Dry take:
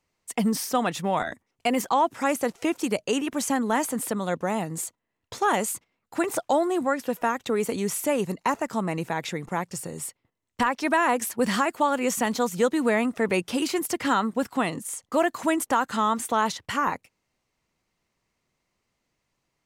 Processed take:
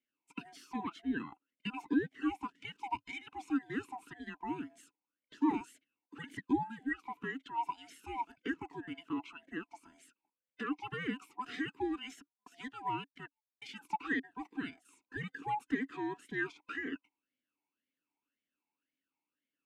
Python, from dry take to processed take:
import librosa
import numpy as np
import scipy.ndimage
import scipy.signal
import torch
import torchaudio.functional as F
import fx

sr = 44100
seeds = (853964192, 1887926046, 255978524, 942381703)

y = fx.band_swap(x, sr, width_hz=500)
y = fx.step_gate(y, sr, bpm=130, pattern='xxx.x...xx', floor_db=-60.0, edge_ms=4.5, at=(12.2, 14.23), fade=0.02)
y = fx.vowel_sweep(y, sr, vowels='i-u', hz=1.9)